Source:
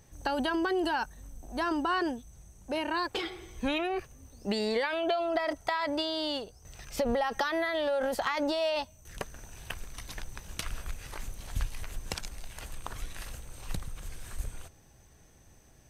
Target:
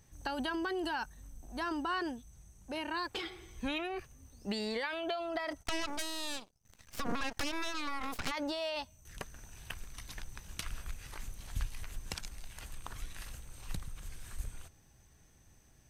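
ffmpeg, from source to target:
-filter_complex "[0:a]equalizer=f=540:t=o:w=1.4:g=-5,asplit=3[s0][s1][s2];[s0]afade=t=out:st=5.62:d=0.02[s3];[s1]aeval=exprs='0.126*(cos(1*acos(clip(val(0)/0.126,-1,1)))-cos(1*PI/2))+0.0447*(cos(3*acos(clip(val(0)/0.126,-1,1)))-cos(3*PI/2))+0.0398*(cos(6*acos(clip(val(0)/0.126,-1,1)))-cos(6*PI/2))':c=same,afade=t=in:st=5.62:d=0.02,afade=t=out:st=8.3:d=0.02[s4];[s2]afade=t=in:st=8.3:d=0.02[s5];[s3][s4][s5]amix=inputs=3:normalize=0,volume=0.631"

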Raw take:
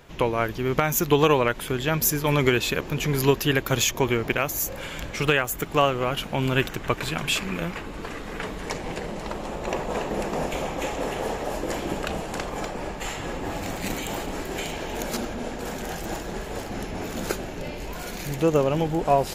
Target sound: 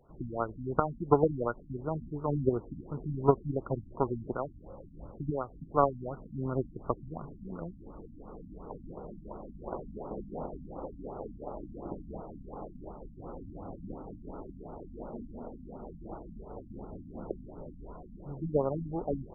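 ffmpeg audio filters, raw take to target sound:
-af "aeval=exprs='0.473*(cos(1*acos(clip(val(0)/0.473,-1,1)))-cos(1*PI/2))+0.119*(cos(3*acos(clip(val(0)/0.473,-1,1)))-cos(3*PI/2))':c=same,afftfilt=real='re*lt(b*sr/1024,280*pow(1500/280,0.5+0.5*sin(2*PI*2.8*pts/sr)))':imag='im*lt(b*sr/1024,280*pow(1500/280,0.5+0.5*sin(2*PI*2.8*pts/sr)))':win_size=1024:overlap=0.75,volume=1.12"

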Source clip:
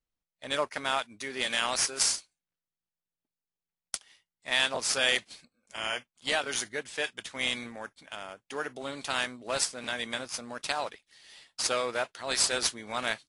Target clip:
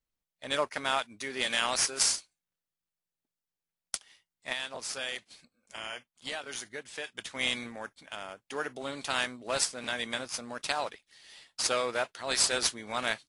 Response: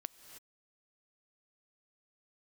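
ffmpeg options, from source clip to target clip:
-filter_complex "[0:a]asettb=1/sr,asplit=3[s0][s1][s2];[s0]atrim=end=4.524[s3];[s1]atrim=start=4.52:end=7.15,asetpts=PTS-STARTPTS,afade=t=in:d=0.004:c=qsin,afade=t=out:st=2.626:d=0.004:c=qsin,acompressor=threshold=0.00891:ratio=2[s4];[s2]atrim=start=7.146[s5];[s3][s4]acrossfade=d=0.004:c1=hsin:c2=qsin[s6];[s6][s5]acrossfade=d=0.004:c1=qsin:c2=hsin"

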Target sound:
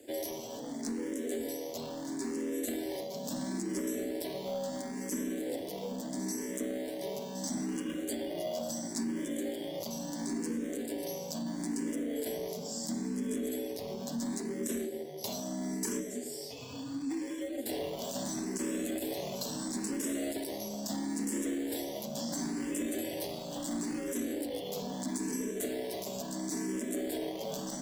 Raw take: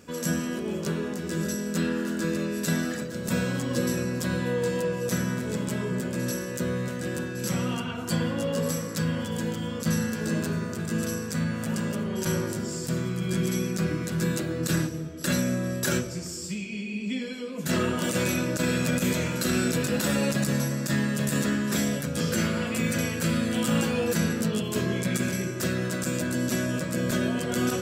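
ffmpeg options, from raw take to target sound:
-filter_complex "[0:a]afreqshift=68,acrossover=split=710|3400[s0][s1][s2];[s1]acrusher=samples=33:mix=1:aa=0.000001[s3];[s0][s3][s2]amix=inputs=3:normalize=0,highpass=f=290:p=1,asoftclip=type=tanh:threshold=0.075,acompressor=threshold=0.0224:ratio=6,asplit=2[s4][s5];[s5]afreqshift=0.74[s6];[s4][s6]amix=inputs=2:normalize=1,volume=1.41"

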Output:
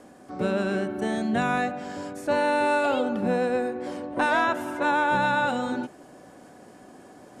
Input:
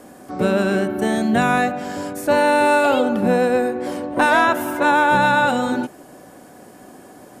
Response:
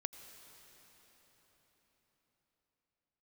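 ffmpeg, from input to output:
-af "areverse,acompressor=mode=upward:threshold=0.0178:ratio=2.5,areverse,lowpass=8000,volume=0.422"

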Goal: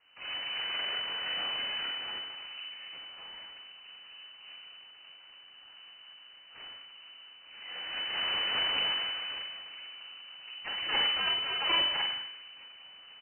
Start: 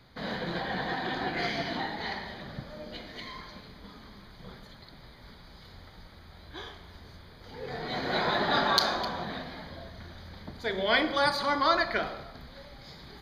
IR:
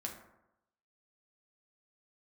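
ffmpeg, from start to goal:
-filter_complex "[0:a]asplit=2[s0][s1];[s1]adelay=43,volume=0.501[s2];[s0][s2]amix=inputs=2:normalize=0[s3];[1:a]atrim=start_sample=2205,afade=t=out:st=0.33:d=0.01,atrim=end_sample=14994[s4];[s3][s4]afir=irnorm=-1:irlink=0,aeval=exprs='abs(val(0))':c=same,lowpass=f=2600:t=q:w=0.5098,lowpass=f=2600:t=q:w=0.6013,lowpass=f=2600:t=q:w=0.9,lowpass=f=2600:t=q:w=2.563,afreqshift=-3000,volume=0.668"

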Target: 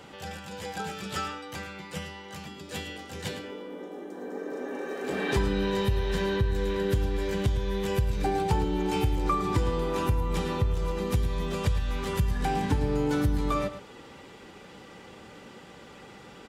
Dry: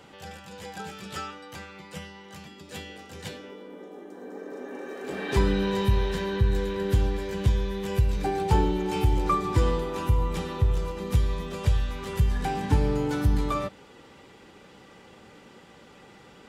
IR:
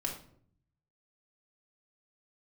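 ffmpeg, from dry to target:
-filter_complex "[0:a]acompressor=threshold=0.0447:ratio=3,asplit=2[s0][s1];[s1]aecho=0:1:109:0.251[s2];[s0][s2]amix=inputs=2:normalize=0,volume=1.41"

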